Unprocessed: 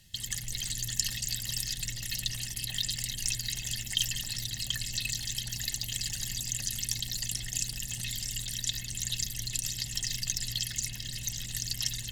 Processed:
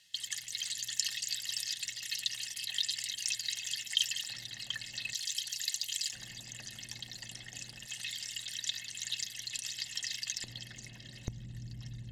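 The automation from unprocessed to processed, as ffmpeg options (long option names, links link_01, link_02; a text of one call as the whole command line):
ffmpeg -i in.wav -af "asetnsamples=nb_out_samples=441:pad=0,asendcmd='4.3 bandpass f 1200;5.14 bandpass f 4500;6.13 bandpass f 840;7.86 bandpass f 2100;10.44 bandpass f 560;11.28 bandpass f 170',bandpass=frequency=3100:width_type=q:width=0.58:csg=0" out.wav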